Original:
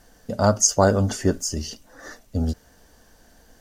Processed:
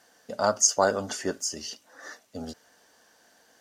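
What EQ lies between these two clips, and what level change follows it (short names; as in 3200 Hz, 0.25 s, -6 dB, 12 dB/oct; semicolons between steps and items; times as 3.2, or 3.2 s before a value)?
weighting filter A; -2.5 dB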